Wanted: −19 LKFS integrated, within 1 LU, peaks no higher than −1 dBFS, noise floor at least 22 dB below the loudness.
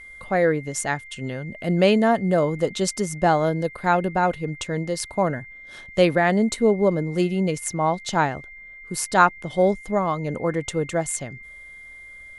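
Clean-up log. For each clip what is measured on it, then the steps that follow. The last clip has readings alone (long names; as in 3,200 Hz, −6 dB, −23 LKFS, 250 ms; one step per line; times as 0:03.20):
interfering tone 2,100 Hz; level of the tone −40 dBFS; integrated loudness −22.5 LKFS; sample peak −2.5 dBFS; target loudness −19.0 LKFS
→ notch filter 2,100 Hz, Q 30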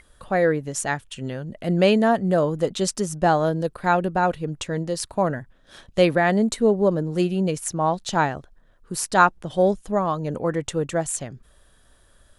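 interfering tone none found; integrated loudness −22.5 LKFS; sample peak −2.5 dBFS; target loudness −19.0 LKFS
→ level +3.5 dB
brickwall limiter −1 dBFS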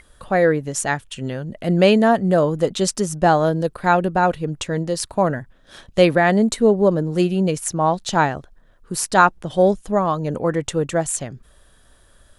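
integrated loudness −19.0 LKFS; sample peak −1.0 dBFS; background noise floor −54 dBFS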